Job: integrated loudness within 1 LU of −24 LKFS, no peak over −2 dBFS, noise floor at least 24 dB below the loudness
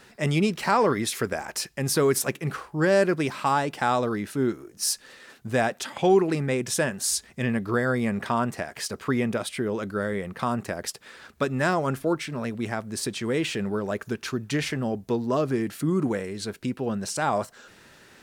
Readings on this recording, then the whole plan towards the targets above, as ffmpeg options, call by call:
integrated loudness −26.5 LKFS; sample peak −8.5 dBFS; target loudness −24.0 LKFS
→ -af "volume=2.5dB"

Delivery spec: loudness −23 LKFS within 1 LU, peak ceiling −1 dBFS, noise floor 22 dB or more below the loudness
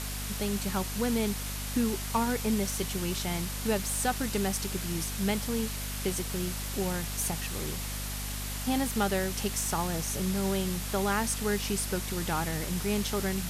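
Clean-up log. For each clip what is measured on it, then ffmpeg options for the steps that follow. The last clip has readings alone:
mains hum 50 Hz; hum harmonics up to 250 Hz; level of the hum −35 dBFS; background noise floor −35 dBFS; target noise floor −53 dBFS; integrated loudness −30.5 LKFS; sample peak −15.0 dBFS; target loudness −23.0 LKFS
→ -af "bandreject=frequency=50:width_type=h:width=6,bandreject=frequency=100:width_type=h:width=6,bandreject=frequency=150:width_type=h:width=6,bandreject=frequency=200:width_type=h:width=6,bandreject=frequency=250:width_type=h:width=6"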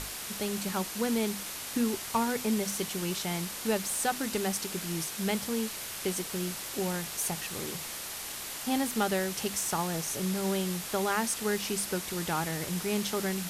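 mains hum none found; background noise floor −39 dBFS; target noise floor −54 dBFS
→ -af "afftdn=noise_reduction=15:noise_floor=-39"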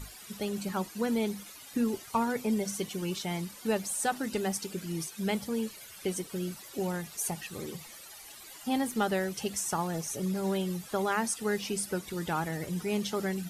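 background noise floor −49 dBFS; target noise floor −55 dBFS
→ -af "afftdn=noise_reduction=6:noise_floor=-49"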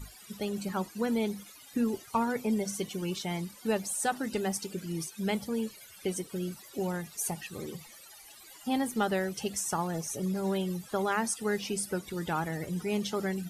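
background noise floor −52 dBFS; target noise floor −55 dBFS
→ -af "afftdn=noise_reduction=6:noise_floor=-52"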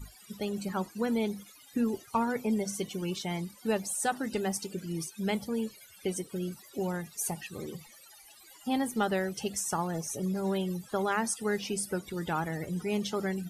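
background noise floor −55 dBFS; integrated loudness −33.0 LKFS; sample peak −17.0 dBFS; target loudness −23.0 LKFS
→ -af "volume=10dB"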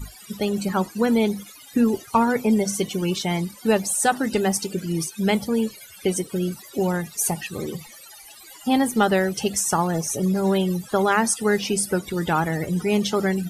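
integrated loudness −23.0 LKFS; sample peak −7.0 dBFS; background noise floor −45 dBFS

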